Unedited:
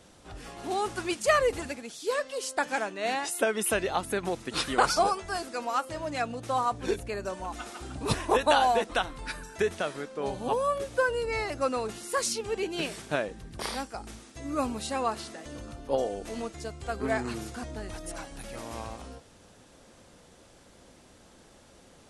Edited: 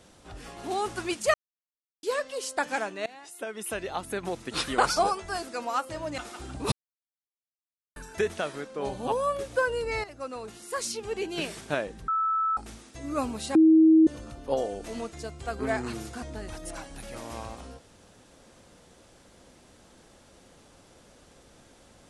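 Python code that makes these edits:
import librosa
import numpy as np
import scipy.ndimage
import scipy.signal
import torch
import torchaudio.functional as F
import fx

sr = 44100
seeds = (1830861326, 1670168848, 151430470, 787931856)

y = fx.edit(x, sr, fx.silence(start_s=1.34, length_s=0.69),
    fx.fade_in_from(start_s=3.06, length_s=1.52, floor_db=-22.0),
    fx.cut(start_s=6.18, length_s=1.41),
    fx.silence(start_s=8.13, length_s=1.24),
    fx.fade_in_from(start_s=11.45, length_s=1.32, floor_db=-12.5),
    fx.bleep(start_s=13.49, length_s=0.49, hz=1310.0, db=-23.0),
    fx.bleep(start_s=14.96, length_s=0.52, hz=319.0, db=-13.5), tone=tone)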